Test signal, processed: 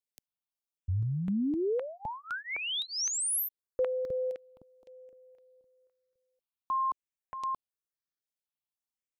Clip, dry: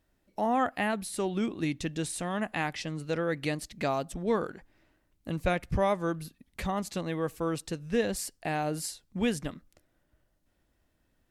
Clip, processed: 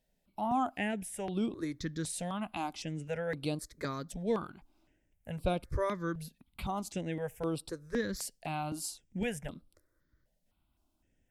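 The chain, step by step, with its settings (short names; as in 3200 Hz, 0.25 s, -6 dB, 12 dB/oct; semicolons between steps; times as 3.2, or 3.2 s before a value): step phaser 3.9 Hz 320–6500 Hz; gain -2 dB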